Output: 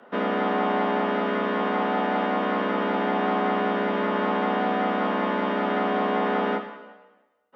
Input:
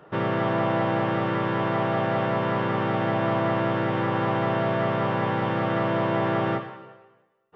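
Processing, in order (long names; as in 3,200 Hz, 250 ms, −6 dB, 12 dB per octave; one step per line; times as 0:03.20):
frequency shifter +82 Hz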